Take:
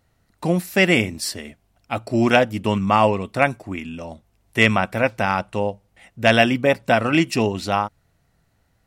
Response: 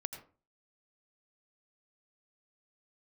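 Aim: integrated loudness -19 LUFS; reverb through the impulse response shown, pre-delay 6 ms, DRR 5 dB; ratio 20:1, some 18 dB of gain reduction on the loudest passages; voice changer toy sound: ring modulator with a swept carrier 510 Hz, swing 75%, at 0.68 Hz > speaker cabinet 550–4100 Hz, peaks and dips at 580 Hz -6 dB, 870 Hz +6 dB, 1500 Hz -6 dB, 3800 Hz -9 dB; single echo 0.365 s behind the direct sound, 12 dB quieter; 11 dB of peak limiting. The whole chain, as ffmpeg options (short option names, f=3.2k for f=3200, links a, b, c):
-filter_complex "[0:a]acompressor=threshold=-28dB:ratio=20,alimiter=limit=-24dB:level=0:latency=1,aecho=1:1:365:0.251,asplit=2[a][b];[1:a]atrim=start_sample=2205,adelay=6[c];[b][c]afir=irnorm=-1:irlink=0,volume=-4dB[d];[a][d]amix=inputs=2:normalize=0,aeval=exprs='val(0)*sin(2*PI*510*n/s+510*0.75/0.68*sin(2*PI*0.68*n/s))':c=same,highpass=550,equalizer=f=580:t=q:w=4:g=-6,equalizer=f=870:t=q:w=4:g=6,equalizer=f=1.5k:t=q:w=4:g=-6,equalizer=f=3.8k:t=q:w=4:g=-9,lowpass=f=4.1k:w=0.5412,lowpass=f=4.1k:w=1.3066,volume=21.5dB"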